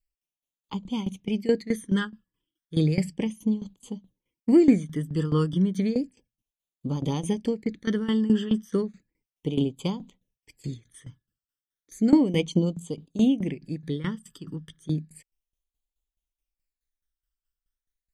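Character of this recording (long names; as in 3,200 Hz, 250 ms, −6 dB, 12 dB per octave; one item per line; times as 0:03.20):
phaser sweep stages 12, 0.33 Hz, lowest notch 710–1,800 Hz
tremolo saw down 4.7 Hz, depth 85%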